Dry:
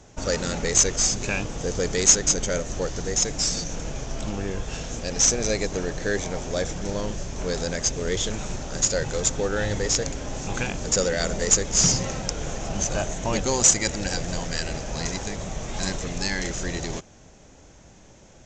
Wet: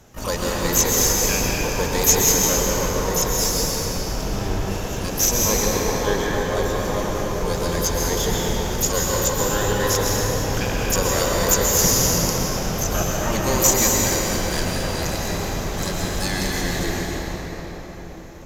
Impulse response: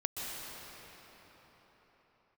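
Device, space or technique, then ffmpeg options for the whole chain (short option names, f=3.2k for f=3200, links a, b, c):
shimmer-style reverb: -filter_complex "[0:a]asettb=1/sr,asplit=3[a][b][c];[a]atrim=end=5.824[d];[b]atrim=start=5.82:end=6.62,asetpts=PTS-STARTPTS,afade=t=in:d=0.004:c=qsin,afade=t=out:st=0.796:d=0.004:c=qsin,equalizer=f=5.8k:w=1.1:g=-5[e];[c]atrim=start=6.616[f];[d][e]acrossfade=d=0.004:c1=hsin:c2=qsin[g];[g][f]acrossfade=d=0.004:c1=qsin:c2=hsin,asplit=2[h][i];[i]asetrate=88200,aresample=44100,atempo=0.5,volume=-6dB[j];[h][j]amix=inputs=2:normalize=0[k];[1:a]atrim=start_sample=2205[l];[k][l]afir=irnorm=-1:irlink=0"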